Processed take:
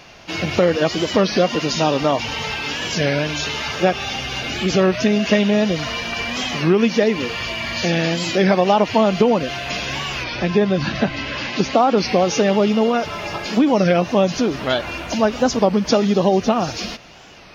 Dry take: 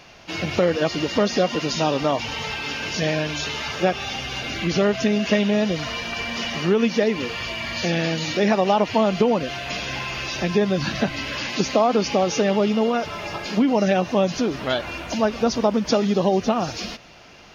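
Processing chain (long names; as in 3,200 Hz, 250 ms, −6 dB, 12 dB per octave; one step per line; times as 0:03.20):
0:10.25–0:11.99: high-frequency loss of the air 100 metres
wow of a warped record 33 1/3 rpm, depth 160 cents
level +3.5 dB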